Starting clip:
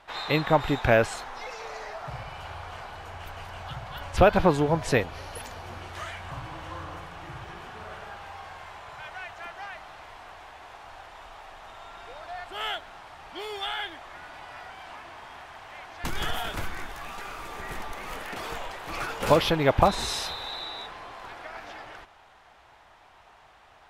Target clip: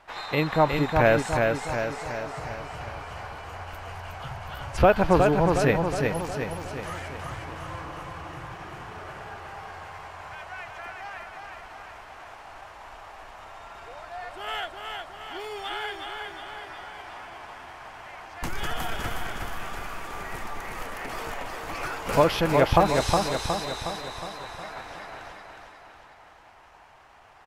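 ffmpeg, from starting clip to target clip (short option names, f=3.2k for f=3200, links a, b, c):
-filter_complex "[0:a]atempo=0.87,equalizer=f=3.6k:w=3.1:g=-5.5,asplit=2[a][b];[b]aecho=0:1:364|728|1092|1456|1820|2184|2548:0.631|0.347|0.191|0.105|0.0577|0.0318|0.0175[c];[a][c]amix=inputs=2:normalize=0"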